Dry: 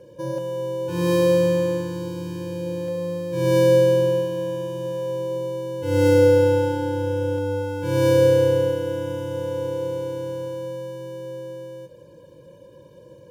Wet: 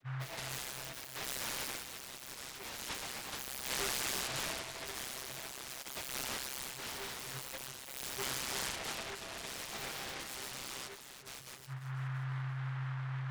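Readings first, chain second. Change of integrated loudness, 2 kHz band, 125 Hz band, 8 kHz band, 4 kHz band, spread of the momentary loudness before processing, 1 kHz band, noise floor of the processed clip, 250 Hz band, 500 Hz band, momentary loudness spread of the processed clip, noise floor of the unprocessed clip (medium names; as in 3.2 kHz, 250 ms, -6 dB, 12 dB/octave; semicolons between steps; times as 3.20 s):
-18.0 dB, -6.5 dB, -16.0 dB, +2.5 dB, -2.5 dB, 16 LU, -11.5 dB, -50 dBFS, -25.0 dB, -31.0 dB, 9 LU, -47 dBFS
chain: spectral gate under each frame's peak -25 dB weak; dynamic bell 360 Hz, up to -4 dB, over -54 dBFS, Q 0.71; compression 4:1, threshold -40 dBFS, peak gain reduction 8.5 dB; hum 60 Hz, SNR 10 dB; loudest bins only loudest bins 4; on a send: bucket-brigade echo 340 ms, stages 4096, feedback 52%, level -9.5 dB; on the sum: vocoder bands 32, saw 132 Hz; delay time shaken by noise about 1.3 kHz, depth 0.33 ms; trim +13.5 dB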